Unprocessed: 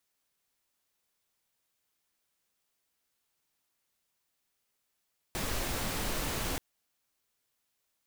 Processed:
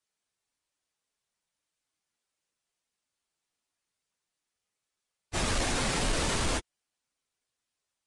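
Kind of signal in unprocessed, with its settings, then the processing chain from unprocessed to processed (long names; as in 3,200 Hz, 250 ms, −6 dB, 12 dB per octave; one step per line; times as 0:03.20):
noise pink, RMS −33.5 dBFS 1.23 s
random phases in long frames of 50 ms
leveller curve on the samples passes 2
downsampling to 22,050 Hz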